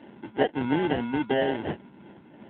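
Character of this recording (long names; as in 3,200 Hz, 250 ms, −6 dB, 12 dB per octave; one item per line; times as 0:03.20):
phaser sweep stages 2, 3 Hz, lowest notch 730–1,600 Hz
aliases and images of a low sample rate 1,200 Hz, jitter 0%
AMR narrowband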